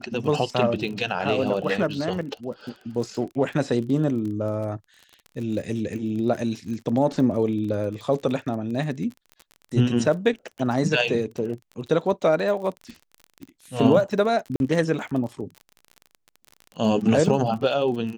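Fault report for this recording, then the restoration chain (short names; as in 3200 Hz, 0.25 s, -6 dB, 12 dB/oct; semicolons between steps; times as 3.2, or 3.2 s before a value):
crackle 32/s -32 dBFS
14.56–14.6 gap 41 ms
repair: de-click; interpolate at 14.56, 41 ms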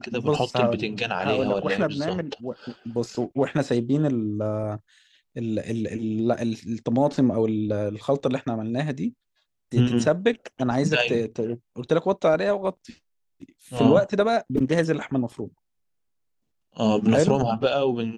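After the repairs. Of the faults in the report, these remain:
none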